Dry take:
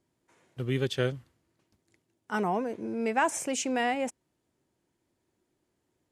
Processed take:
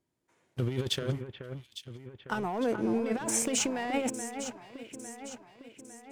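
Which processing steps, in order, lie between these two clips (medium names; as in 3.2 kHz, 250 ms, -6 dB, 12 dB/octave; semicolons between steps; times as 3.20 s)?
waveshaping leveller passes 2; compressor with a negative ratio -25 dBFS, ratio -0.5; echo whose repeats swap between lows and highs 427 ms, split 2.5 kHz, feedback 71%, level -8.5 dB; trim -4.5 dB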